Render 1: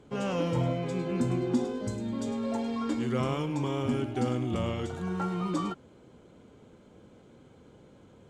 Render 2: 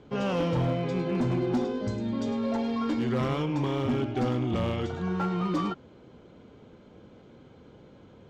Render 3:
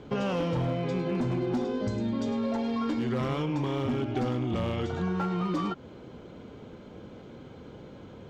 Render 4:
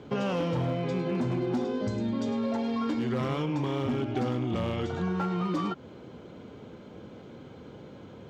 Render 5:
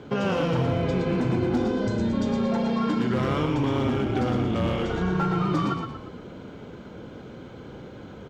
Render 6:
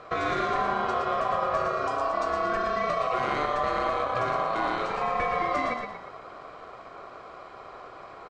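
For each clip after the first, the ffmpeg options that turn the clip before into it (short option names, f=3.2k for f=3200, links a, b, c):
-af "lowpass=f=5.6k:w=0.5412,lowpass=f=5.6k:w=1.3066,asoftclip=type=hard:threshold=-25dB,volume=3dB"
-af "acompressor=threshold=-33dB:ratio=5,volume=6dB"
-af "highpass=73"
-filter_complex "[0:a]equalizer=f=1.5k:t=o:w=0.26:g=4.5,asplit=2[a][b];[b]asplit=5[c][d][e][f][g];[c]adelay=117,afreqshift=-30,volume=-5dB[h];[d]adelay=234,afreqshift=-60,volume=-12.1dB[i];[e]adelay=351,afreqshift=-90,volume=-19.3dB[j];[f]adelay=468,afreqshift=-120,volume=-26.4dB[k];[g]adelay=585,afreqshift=-150,volume=-33.5dB[l];[h][i][j][k][l]amix=inputs=5:normalize=0[m];[a][m]amix=inputs=2:normalize=0,volume=3.5dB"
-af "aeval=exprs='val(0)*sin(2*PI*890*n/s)':c=same,aresample=22050,aresample=44100"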